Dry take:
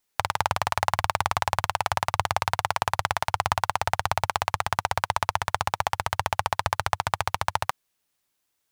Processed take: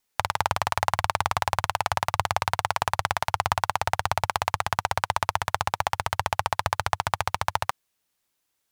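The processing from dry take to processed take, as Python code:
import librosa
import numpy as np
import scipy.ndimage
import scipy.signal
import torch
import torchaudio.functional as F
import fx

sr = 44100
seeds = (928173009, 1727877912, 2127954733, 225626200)

y = fx.vibrato(x, sr, rate_hz=1.9, depth_cents=5.5)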